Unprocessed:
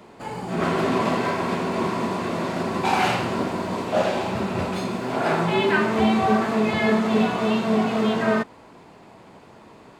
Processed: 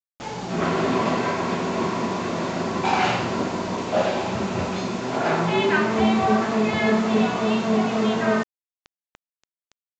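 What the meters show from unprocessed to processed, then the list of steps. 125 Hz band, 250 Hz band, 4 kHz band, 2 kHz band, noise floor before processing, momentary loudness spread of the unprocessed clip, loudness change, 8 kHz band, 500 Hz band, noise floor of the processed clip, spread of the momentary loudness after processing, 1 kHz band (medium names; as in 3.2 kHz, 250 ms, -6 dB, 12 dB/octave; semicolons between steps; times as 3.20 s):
0.0 dB, 0.0 dB, +0.5 dB, 0.0 dB, -48 dBFS, 6 LU, 0.0 dB, +2.5 dB, 0.0 dB, under -85 dBFS, 6 LU, 0.0 dB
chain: word length cut 6-bit, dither none; resampled via 16 kHz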